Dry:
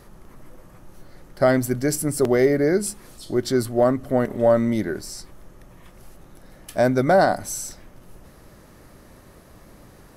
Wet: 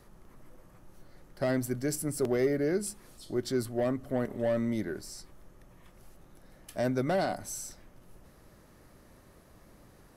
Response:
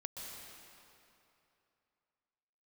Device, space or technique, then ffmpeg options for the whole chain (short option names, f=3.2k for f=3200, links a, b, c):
one-band saturation: -filter_complex "[0:a]acrossover=split=460|2200[a][b][c];[b]asoftclip=type=tanh:threshold=-21dB[d];[a][d][c]amix=inputs=3:normalize=0,volume=-9dB"